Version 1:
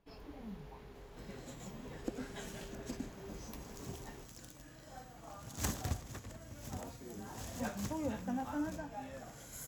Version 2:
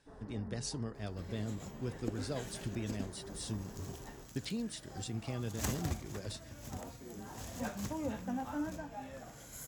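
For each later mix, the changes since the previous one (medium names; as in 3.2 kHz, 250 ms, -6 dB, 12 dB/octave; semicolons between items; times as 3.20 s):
speech: unmuted; first sound: add brick-wall FIR low-pass 2 kHz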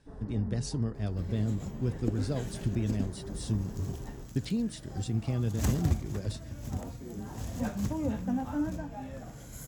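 master: add bass shelf 340 Hz +11.5 dB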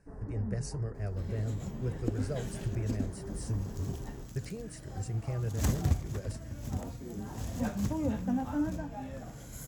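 speech: add static phaser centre 940 Hz, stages 6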